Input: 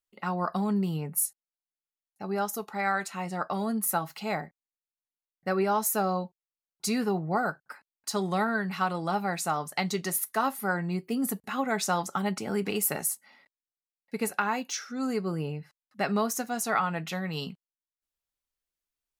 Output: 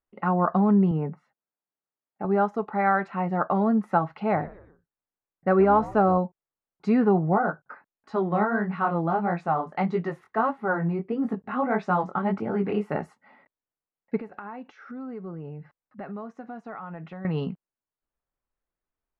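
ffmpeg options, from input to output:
-filter_complex "[0:a]asettb=1/sr,asplit=3[s0][s1][s2];[s0]atrim=end=0.914[s3];[s1]atrim=start=0.91:end=2.25,asetpts=PTS-STARTPTS,afade=t=in:d=0.004:c=qsin,afade=t=out:st=1.336:d=0.004:c=qsin,highpass=150,lowpass=2700[s4];[s2]atrim=start=2.246[s5];[s3][s4]acrossfade=d=0.004:c1=hsin:c2=qsin[s6];[s6][s5]acrossfade=d=0.004:c1=qsin:c2=hsin,asettb=1/sr,asplit=3[s7][s8][s9];[s7]atrim=end=4.174[s10];[s8]atrim=start=4.17:end=6.18,asetpts=PTS-STARTPTS,afade=t=in:d=0.004:c=qsin,afade=t=out:st=2.006:d=0.004:c=qsin,asplit=4[s11][s12][s13][s14];[s12]adelay=118,afreqshift=-110,volume=0.112[s15];[s13]adelay=236,afreqshift=-220,volume=0.0473[s16];[s14]adelay=354,afreqshift=-330,volume=0.0197[s17];[s11][s15][s16][s17]amix=inputs=4:normalize=0,atrim=end_sample=88641[s18];[s9]atrim=start=6.176[s19];[s10][s18]acrossfade=d=0.004:c1=hsin:c2=qsin[s20];[s20][s19]acrossfade=d=0.004:c1=qsin:c2=hsin,asplit=3[s21][s22][s23];[s21]afade=t=out:st=7.33:d=0.02[s24];[s22]flanger=delay=17:depth=7.3:speed=1.6,afade=t=in:st=7.33:d=0.02,afade=t=out:st=12.92:d=0.02[s25];[s23]afade=t=in:st=12.92:d=0.02[s26];[s24][s25][s26]amix=inputs=3:normalize=0,asettb=1/sr,asplit=3[s27][s28][s29];[s27]atrim=end=14.204[s30];[s28]atrim=start=14.2:end=17.25,asetpts=PTS-STARTPTS,afade=t=in:d=0.004:c=qsin,afade=t=out:st=3.046:d=0.004:c=qsin,acompressor=threshold=0.00631:ratio=4:attack=3.2:release=140:knee=1:detection=peak[s31];[s29]atrim=start=17.246[s32];[s30][s31]acrossfade=d=0.004:c1=hsin:c2=qsin[s33];[s33][s32]acrossfade=d=0.004:c1=qsin:c2=hsin,lowpass=1600,aemphasis=mode=reproduction:type=75fm,volume=2.24"

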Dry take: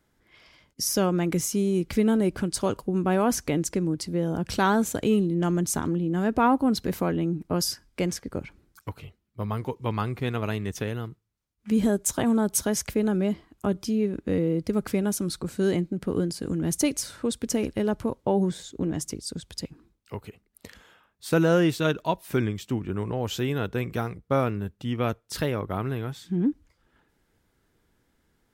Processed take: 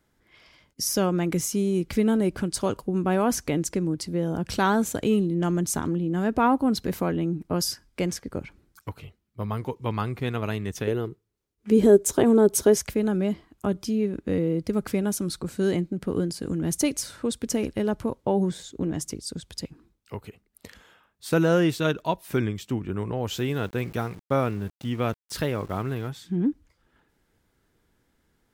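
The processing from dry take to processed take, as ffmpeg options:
-filter_complex "[0:a]asettb=1/sr,asplit=3[s0][s1][s2];[s0]atrim=end=10.874[s3];[s1]atrim=start=10.87:end=12.78,asetpts=PTS-STARTPTS,afade=t=in:d=0.004:c=qsin,afade=t=out:st=1.906:d=0.004:c=qsin,equalizer=f=400:t=o:w=0.7:g=14[s4];[s2]atrim=start=12.776[s5];[s3][s4]acrossfade=d=0.004:c1=hsin:c2=qsin[s6];[s6][s5]acrossfade=d=0.004:c1=qsin:c2=hsin,asettb=1/sr,asplit=3[s7][s8][s9];[s7]atrim=end=23.324[s10];[s8]atrim=start=23.32:end=26.09,asetpts=PTS-STARTPTS,afade=t=in:d=0.004:c=qsin,afade=t=out:st=2.766:d=0.004:c=qsin,aeval=exprs='val(0)*gte(abs(val(0)),0.00668)':c=same[s11];[s9]atrim=start=26.086[s12];[s10][s11]acrossfade=d=0.004:c1=hsin:c2=qsin[s13];[s13][s12]acrossfade=d=0.004:c1=qsin:c2=hsin"

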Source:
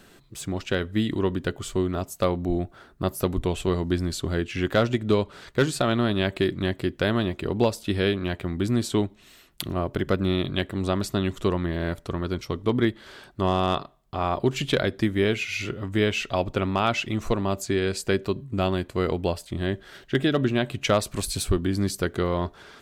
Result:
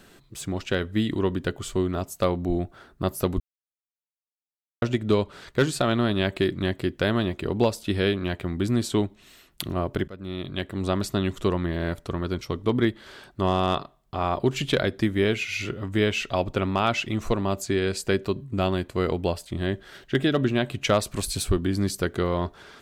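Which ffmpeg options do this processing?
-filter_complex "[0:a]asplit=4[s0][s1][s2][s3];[s0]atrim=end=3.4,asetpts=PTS-STARTPTS,afade=t=out:st=3.396:d=0.004:c=hsin[s4];[s1]atrim=start=3.4:end=4.82,asetpts=PTS-STARTPTS,volume=0[s5];[s2]atrim=start=4.82:end=10.08,asetpts=PTS-STARTPTS,afade=t=in:d=0.004:c=hsin,afade=t=out:st=5.256:d=0.004:c=hsin:silence=0.0794328[s6];[s3]atrim=start=10.08,asetpts=PTS-STARTPTS,afade=t=in:d=0.84:silence=0.0794328[s7];[s4][s5][s6][s7]concat=n=4:v=0:a=1"

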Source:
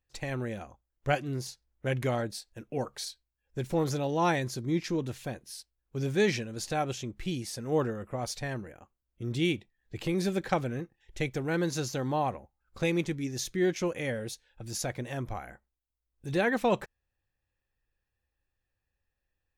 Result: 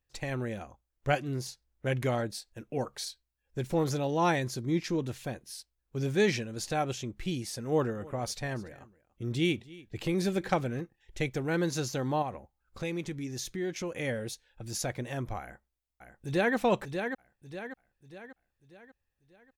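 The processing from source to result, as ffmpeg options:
-filter_complex "[0:a]asettb=1/sr,asplit=3[s0][s1][s2];[s0]atrim=end=7.634[s3];[s1]atrim=start=7.63:end=10.81,asetpts=PTS-STARTPTS,afade=t=in:d=0.004:c=qsin,afade=t=out:st=3.176:d=0.004:c=qsin,aecho=1:1:289:0.0891,atrim=end_sample=140238[s4];[s2]atrim=start=10.806[s5];[s3][s4]acrossfade=d=0.004:c1=hsin:c2=qsin[s6];[s6][s5]acrossfade=d=0.004:c1=qsin:c2=hsin,asettb=1/sr,asplit=3[s7][s8][s9];[s7]atrim=end=12.224[s10];[s8]atrim=start=12.22:end=13.98,asetpts=PTS-STARTPTS,afade=t=in:d=0.004:c=qsin,afade=t=out:st=1.756:d=0.004:c=qsin,acompressor=threshold=0.0178:ratio=2:attack=3.2:release=140:knee=1:detection=peak[s11];[s9]atrim=start=13.976[s12];[s10][s11]acrossfade=d=0.004:c1=hsin:c2=qsin[s13];[s13][s12]acrossfade=d=0.004:c1=qsin:c2=hsin,asplit=2[s14][s15];[s15]afade=t=in:st=15.41:d=0.01,afade=t=out:st=16.55:d=0.01,aecho=0:1:590|1180|1770|2360|2950:0.473151|0.212918|0.0958131|0.0431159|0.0194022[s16];[s14][s16]amix=inputs=2:normalize=0"

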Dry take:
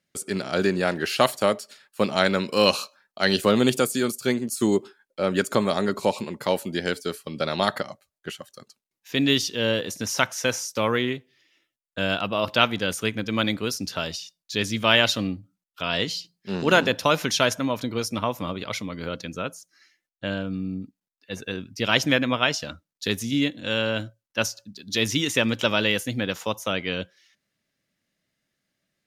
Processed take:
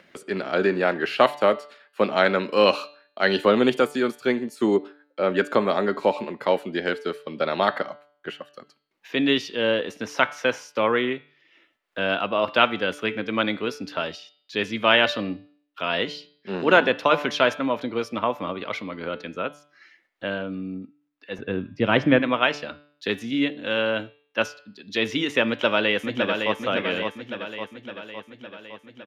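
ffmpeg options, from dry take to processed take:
-filter_complex "[0:a]asettb=1/sr,asplit=3[s0][s1][s2];[s0]atrim=end=21.384[s3];[s1]atrim=start=21.38:end=22.19,asetpts=PTS-STARTPTS,afade=t=in:d=0.004:c=qsin,afade=t=out:st=0.806:d=0.004:c=qsin,aemphasis=mode=reproduction:type=riaa[s4];[s2]atrim=start=22.186[s5];[s3][s4]acrossfade=d=0.004:c1=hsin:c2=qsin[s6];[s6][s5]acrossfade=d=0.004:c1=qsin:c2=hsin,asplit=2[s7][s8];[s8]afade=t=in:st=25.47:d=0.01,afade=t=out:st=26.54:d=0.01,aecho=0:1:560|1120|1680|2240|2800|3360|3920|4480:0.562341|0.337405|0.202443|0.121466|0.0728794|0.0437277|0.0262366|0.015742[s9];[s7][s9]amix=inputs=2:normalize=0,acompressor=mode=upward:threshold=0.0141:ratio=2.5,acrossover=split=230 3300:gain=0.2 1 0.0891[s10][s11][s12];[s10][s11][s12]amix=inputs=3:normalize=0,bandreject=f=146.3:t=h:w=4,bandreject=f=292.6:t=h:w=4,bandreject=f=438.9:t=h:w=4,bandreject=f=585.2:t=h:w=4,bandreject=f=731.5:t=h:w=4,bandreject=f=877.8:t=h:w=4,bandreject=f=1024.1:t=h:w=4,bandreject=f=1170.4:t=h:w=4,bandreject=f=1316.7:t=h:w=4,bandreject=f=1463:t=h:w=4,bandreject=f=1609.3:t=h:w=4,bandreject=f=1755.6:t=h:w=4,bandreject=f=1901.9:t=h:w=4,bandreject=f=2048.2:t=h:w=4,bandreject=f=2194.5:t=h:w=4,bandreject=f=2340.8:t=h:w=4,bandreject=f=2487.1:t=h:w=4,bandreject=f=2633.4:t=h:w=4,bandreject=f=2779.7:t=h:w=4,bandreject=f=2926:t=h:w=4,bandreject=f=3072.3:t=h:w=4,bandreject=f=3218.6:t=h:w=4,bandreject=f=3364.9:t=h:w=4,bandreject=f=3511.2:t=h:w=4,bandreject=f=3657.5:t=h:w=4,bandreject=f=3803.8:t=h:w=4,bandreject=f=3950.1:t=h:w=4,bandreject=f=4096.4:t=h:w=4,bandreject=f=4242.7:t=h:w=4,bandreject=f=4389:t=h:w=4,bandreject=f=4535.3:t=h:w=4,bandreject=f=4681.6:t=h:w=4,bandreject=f=4827.9:t=h:w=4,bandreject=f=4974.2:t=h:w=4,volume=1.41"

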